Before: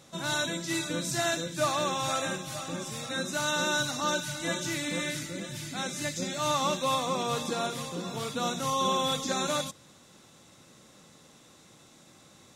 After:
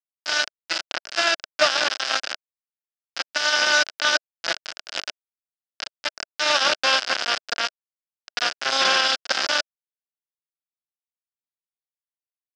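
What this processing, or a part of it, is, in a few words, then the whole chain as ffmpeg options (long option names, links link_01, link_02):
hand-held game console: -af "acrusher=bits=3:mix=0:aa=0.000001,highpass=420,equalizer=frequency=440:width_type=q:width=4:gain=-5,equalizer=frequency=630:width_type=q:width=4:gain=5,equalizer=frequency=1000:width_type=q:width=4:gain=-4,equalizer=frequency=1500:width_type=q:width=4:gain=9,equalizer=frequency=2900:width_type=q:width=4:gain=5,equalizer=frequency=5000:width_type=q:width=4:gain=10,lowpass=frequency=5700:width=0.5412,lowpass=frequency=5700:width=1.3066,volume=5.5dB"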